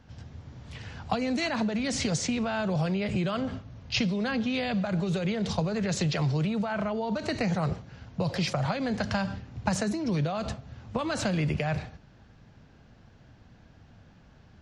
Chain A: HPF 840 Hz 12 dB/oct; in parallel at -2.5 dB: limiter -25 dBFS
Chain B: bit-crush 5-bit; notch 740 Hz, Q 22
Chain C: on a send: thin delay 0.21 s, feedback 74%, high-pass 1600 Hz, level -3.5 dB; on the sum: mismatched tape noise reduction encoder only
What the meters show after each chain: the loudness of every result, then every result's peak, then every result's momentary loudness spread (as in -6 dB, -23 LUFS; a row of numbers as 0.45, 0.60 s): -31.5, -28.0, -29.0 LUFS; -13.0, -11.5, -11.5 dBFS; 10, 6, 16 LU